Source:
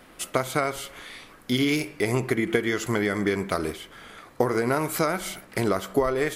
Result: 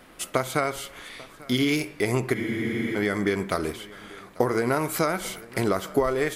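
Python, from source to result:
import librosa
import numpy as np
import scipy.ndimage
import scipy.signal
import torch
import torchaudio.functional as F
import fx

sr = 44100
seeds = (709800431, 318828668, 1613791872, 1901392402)

p1 = x + fx.echo_single(x, sr, ms=843, db=-21.5, dry=0)
y = fx.spec_freeze(p1, sr, seeds[0], at_s=2.37, hold_s=0.6)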